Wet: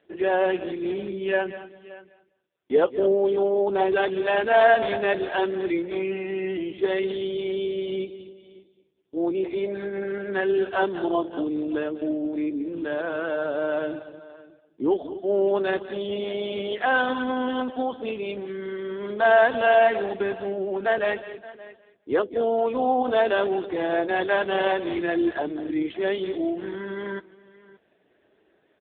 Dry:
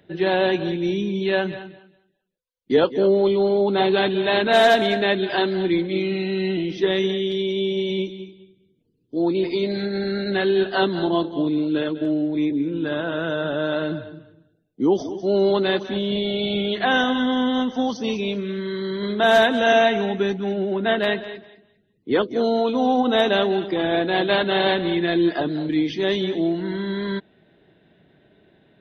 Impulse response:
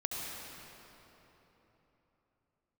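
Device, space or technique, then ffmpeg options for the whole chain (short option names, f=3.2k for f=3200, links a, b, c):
satellite phone: -af "highpass=370,lowpass=3.4k,aecho=1:1:573:0.112" -ar 8000 -c:a libopencore_amrnb -b:a 5150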